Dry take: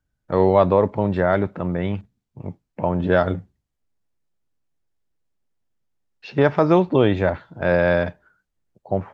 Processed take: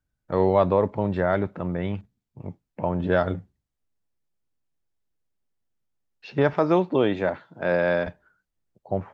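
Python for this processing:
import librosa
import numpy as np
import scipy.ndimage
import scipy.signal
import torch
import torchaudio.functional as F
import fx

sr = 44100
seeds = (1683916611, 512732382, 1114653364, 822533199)

y = fx.highpass(x, sr, hz=170.0, slope=12, at=(6.53, 8.07))
y = y * 10.0 ** (-4.0 / 20.0)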